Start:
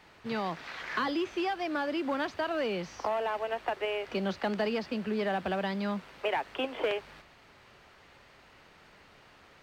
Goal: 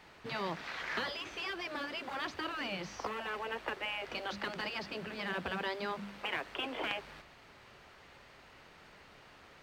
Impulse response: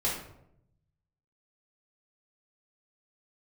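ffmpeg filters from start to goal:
-af "bandreject=f=100.7:t=h:w=4,bandreject=f=201.4:t=h:w=4,bandreject=f=302.1:t=h:w=4,afftfilt=real='re*lt(hypot(re,im),0.126)':imag='im*lt(hypot(re,im),0.126)':win_size=1024:overlap=0.75"

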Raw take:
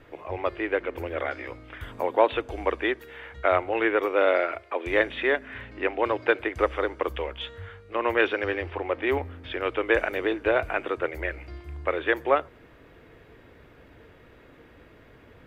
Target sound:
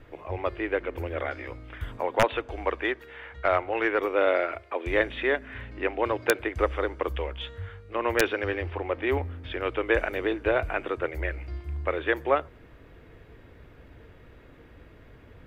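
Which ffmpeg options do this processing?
-filter_complex "[0:a]aeval=exprs='(mod(2.37*val(0)+1,2)-1)/2.37':c=same,asettb=1/sr,asplit=3[s0][s1][s2];[s0]atrim=end=1.974[s3];[s1]atrim=start=1.97:end=3.99,asetpts=PTS-STARTPTS,afade=t=in:d=0.004:c=qsin,afade=t=out:st=2.016:d=0.004:c=qsin,asplit=2[s4][s5];[s5]highpass=f=720:p=1,volume=2,asoftclip=type=tanh:threshold=0.422[s6];[s4][s6]amix=inputs=2:normalize=0,lowpass=f=2900:p=1,volume=0.501[s7];[s2]atrim=start=3.986[s8];[s3][s7]acrossfade=d=0.004:c1=hsin:c2=qsin[s9];[s9][s8]acrossfade=d=0.004:c1=qsin:c2=hsin,lowshelf=f=120:g=10,volume=0.794"

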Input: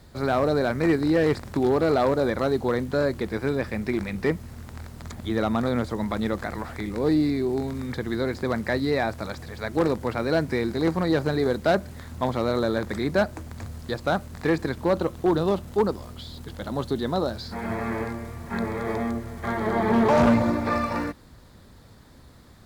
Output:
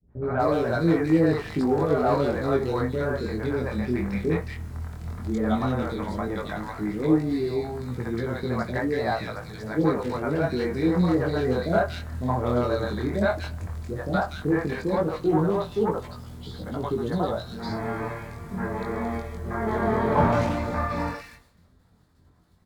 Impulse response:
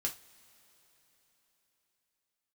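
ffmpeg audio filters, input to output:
-filter_complex "[0:a]agate=range=0.0224:threshold=0.00891:ratio=3:detection=peak,acrossover=split=480|2100[s0][s1][s2];[s1]adelay=70[s3];[s2]adelay=240[s4];[s0][s3][s4]amix=inputs=3:normalize=0,asplit=2[s5][s6];[1:a]atrim=start_sample=2205,afade=t=out:st=0.41:d=0.01,atrim=end_sample=18522,lowpass=2700[s7];[s6][s7]afir=irnorm=-1:irlink=0,volume=0.668[s8];[s5][s8]amix=inputs=2:normalize=0,flanger=delay=17:depth=7.5:speed=0.12"

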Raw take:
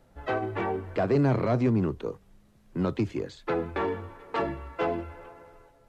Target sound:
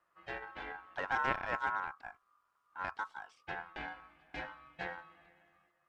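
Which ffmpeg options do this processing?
-af "aeval=exprs='0.224*(cos(1*acos(clip(val(0)/0.224,-1,1)))-cos(1*PI/2))+0.0562*(cos(3*acos(clip(val(0)/0.224,-1,1)))-cos(3*PI/2))':c=same,aeval=exprs='val(0)*sin(2*PI*1200*n/s)':c=same,volume=0.75"

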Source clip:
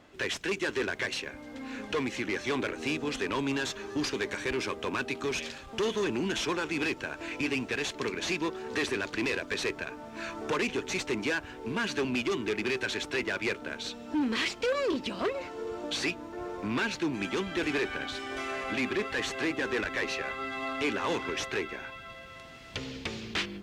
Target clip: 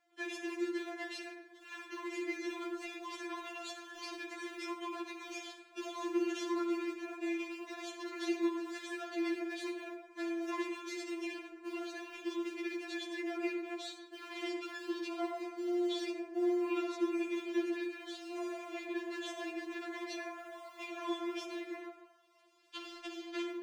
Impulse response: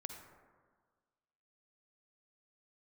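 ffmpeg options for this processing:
-filter_complex "[0:a]bandreject=f=900:w=9.5,agate=range=0.158:threshold=0.0112:ratio=16:detection=peak,highpass=f=140:w=0.5412,highpass=f=140:w=1.3066,acrossover=split=350|930[s0][s1][s2];[s0]acompressor=threshold=0.00631:ratio=4[s3];[s1]acompressor=threshold=0.01:ratio=4[s4];[s2]acompressor=threshold=0.00631:ratio=4[s5];[s3][s4][s5]amix=inputs=3:normalize=0,alimiter=level_in=2:limit=0.0631:level=0:latency=1:release=125,volume=0.501,acrusher=bits=9:mode=log:mix=0:aa=0.000001[s6];[1:a]atrim=start_sample=2205,afade=t=out:st=0.38:d=0.01,atrim=end_sample=17199[s7];[s6][s7]afir=irnorm=-1:irlink=0,afftfilt=real='re*4*eq(mod(b,16),0)':imag='im*4*eq(mod(b,16),0)':win_size=2048:overlap=0.75,volume=2"

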